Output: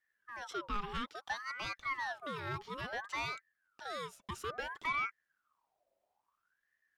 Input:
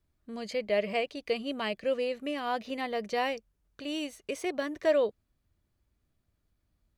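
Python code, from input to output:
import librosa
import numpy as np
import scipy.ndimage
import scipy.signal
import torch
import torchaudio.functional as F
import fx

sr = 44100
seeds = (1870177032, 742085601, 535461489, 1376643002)

y = 10.0 ** (-23.0 / 20.0) * np.tanh(x / 10.0 ** (-23.0 / 20.0))
y = fx.ring_lfo(y, sr, carrier_hz=1200.0, swing_pct=50, hz=0.59)
y = F.gain(torch.from_numpy(y), -4.0).numpy()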